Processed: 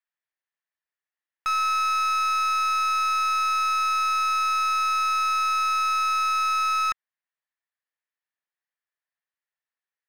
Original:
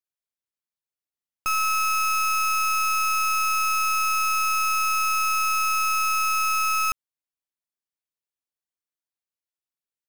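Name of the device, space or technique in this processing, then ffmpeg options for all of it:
megaphone: -af "highpass=670,lowpass=2.7k,equalizer=f=1.8k:t=o:w=0.29:g=10.5,asoftclip=type=hard:threshold=-25dB,volume=3.5dB"

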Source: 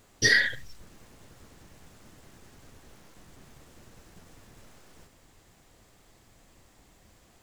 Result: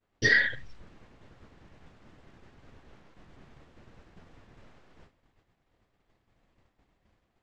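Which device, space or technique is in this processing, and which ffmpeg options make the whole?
hearing-loss simulation: -af "lowpass=3.1k,agate=range=-33dB:threshold=-50dB:ratio=3:detection=peak"

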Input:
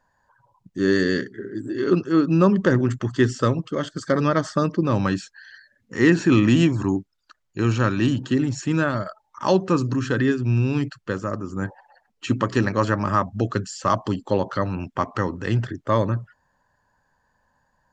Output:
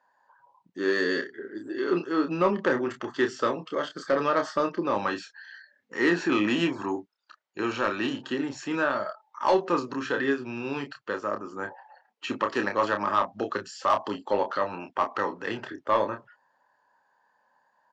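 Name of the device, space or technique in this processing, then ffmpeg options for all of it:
intercom: -filter_complex "[0:a]highpass=400,lowpass=4.5k,equalizer=f=880:t=o:w=0.43:g=4,asoftclip=type=tanh:threshold=-12dB,asplit=2[a][b];[b]adelay=29,volume=-6dB[c];[a][c]amix=inputs=2:normalize=0,volume=-1.5dB"

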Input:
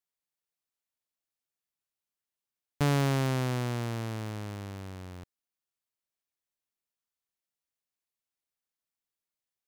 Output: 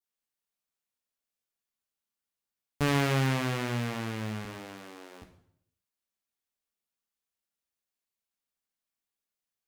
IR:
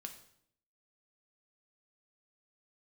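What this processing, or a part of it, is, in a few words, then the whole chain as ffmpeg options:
bathroom: -filter_complex "[0:a]asettb=1/sr,asplit=3[a][b][c];[a]atrim=end=4.454[d];[b]atrim=start=4.45:end=5.22,asetpts=PTS-STARTPTS,afade=t=in:d=0.004:c=qsin,afade=t=out:st=0.766:d=0.004:c=qsin,highpass=f=260:w=0.5412,highpass=f=260:w=1.3066[e];[c]atrim=start=5.216[f];[d][e]acrossfade=d=0.004:c1=hsin:c2=qsin[g];[g][f]acrossfade=d=0.004:c1=qsin:c2=hsin[h];[1:a]atrim=start_sample=2205[i];[h][i]afir=irnorm=-1:irlink=0,adynamicequalizer=threshold=0.00224:dfrequency=2200:dqfactor=0.98:tfrequency=2200:tqfactor=0.98:attack=5:release=100:ratio=0.375:range=3:mode=boostabove:tftype=bell,volume=4.5dB"

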